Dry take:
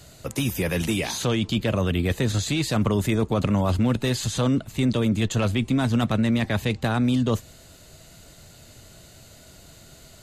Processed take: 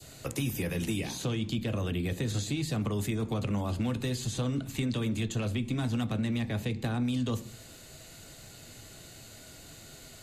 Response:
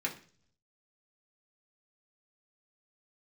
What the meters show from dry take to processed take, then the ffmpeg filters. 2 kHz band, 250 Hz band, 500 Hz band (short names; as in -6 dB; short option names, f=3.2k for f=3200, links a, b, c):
-9.5 dB, -8.5 dB, -10.0 dB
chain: -filter_complex "[0:a]asplit=2[a][b];[1:a]atrim=start_sample=2205[c];[b][c]afir=irnorm=-1:irlink=0,volume=-8.5dB[d];[a][d]amix=inputs=2:normalize=0,acrossover=split=90|230|700[e][f][g][h];[e]acompressor=threshold=-40dB:ratio=4[i];[f]acompressor=threshold=-30dB:ratio=4[j];[g]acompressor=threshold=-36dB:ratio=4[k];[h]acompressor=threshold=-35dB:ratio=4[l];[i][j][k][l]amix=inputs=4:normalize=0,adynamicequalizer=threshold=0.00562:dfrequency=1600:dqfactor=0.86:tfrequency=1600:tqfactor=0.86:attack=5:release=100:ratio=0.375:range=2:mode=cutabove:tftype=bell,volume=-2.5dB"